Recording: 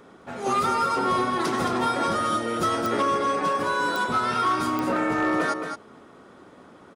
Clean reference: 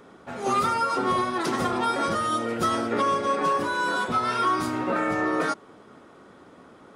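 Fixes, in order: clip repair -16.5 dBFS; de-click; inverse comb 219 ms -6.5 dB

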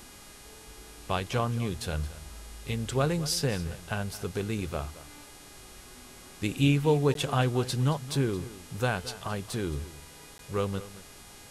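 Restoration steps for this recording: de-hum 410.8 Hz, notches 29; interpolate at 7.14/10.38 s, 12 ms; noise reduction 25 dB, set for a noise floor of -49 dBFS; inverse comb 221 ms -16.5 dB

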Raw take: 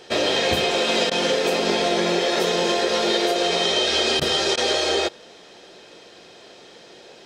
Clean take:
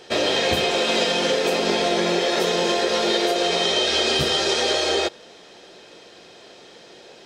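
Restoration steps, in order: interpolate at 1.10/4.20/4.56 s, 13 ms

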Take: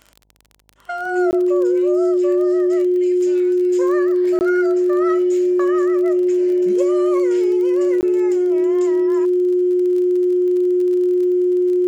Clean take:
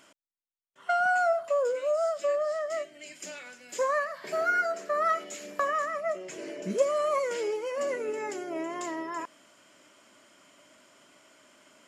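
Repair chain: de-click; de-hum 51.5 Hz, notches 19; band-stop 360 Hz, Q 30; interpolate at 1.31/4.39/8.01 s, 19 ms

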